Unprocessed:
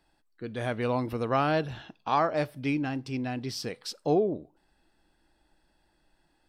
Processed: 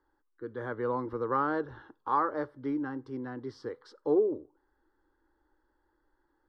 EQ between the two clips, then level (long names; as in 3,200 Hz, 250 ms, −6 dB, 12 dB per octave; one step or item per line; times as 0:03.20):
low-pass filter 1,800 Hz 12 dB per octave
low-shelf EQ 160 Hz −7.5 dB
phaser with its sweep stopped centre 680 Hz, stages 6
+1.5 dB